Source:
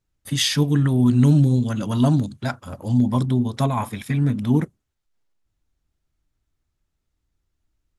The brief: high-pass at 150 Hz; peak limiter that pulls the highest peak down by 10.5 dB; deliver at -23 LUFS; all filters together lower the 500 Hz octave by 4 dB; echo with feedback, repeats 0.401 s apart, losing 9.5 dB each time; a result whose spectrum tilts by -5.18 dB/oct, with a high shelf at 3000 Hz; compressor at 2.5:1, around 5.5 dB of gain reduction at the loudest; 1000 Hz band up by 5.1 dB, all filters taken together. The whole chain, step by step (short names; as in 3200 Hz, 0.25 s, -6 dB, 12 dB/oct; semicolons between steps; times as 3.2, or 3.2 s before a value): HPF 150 Hz; bell 500 Hz -8.5 dB; bell 1000 Hz +7.5 dB; high shelf 3000 Hz +7 dB; compressor 2.5:1, threshold -22 dBFS; limiter -20.5 dBFS; feedback echo 0.401 s, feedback 33%, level -9.5 dB; gain +6 dB